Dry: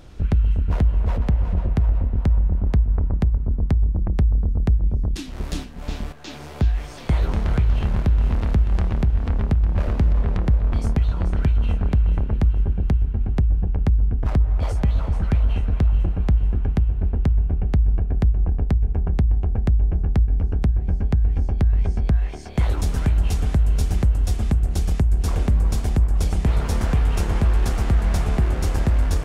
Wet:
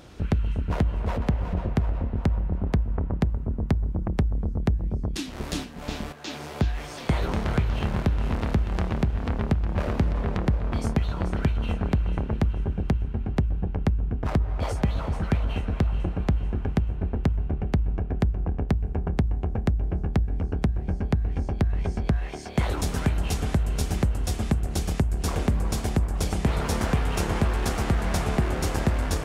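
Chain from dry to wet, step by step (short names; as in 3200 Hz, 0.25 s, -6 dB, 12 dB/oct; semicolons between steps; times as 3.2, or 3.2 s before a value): HPF 160 Hz 6 dB/oct; gain +2 dB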